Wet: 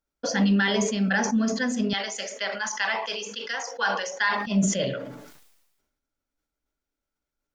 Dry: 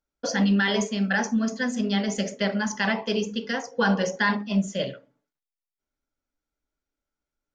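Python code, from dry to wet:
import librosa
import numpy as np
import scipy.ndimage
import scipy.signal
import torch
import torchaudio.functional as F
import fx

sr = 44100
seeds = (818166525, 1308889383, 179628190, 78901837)

y = fx.highpass(x, sr, hz=840.0, slope=12, at=(1.93, 4.47))
y = fx.sustainer(y, sr, db_per_s=51.0)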